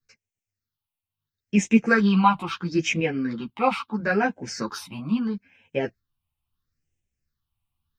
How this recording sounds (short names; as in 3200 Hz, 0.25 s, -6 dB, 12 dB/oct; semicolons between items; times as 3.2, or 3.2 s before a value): phasing stages 6, 0.75 Hz, lowest notch 430–1200 Hz; tremolo saw up 1 Hz, depth 35%; a shimmering, thickened sound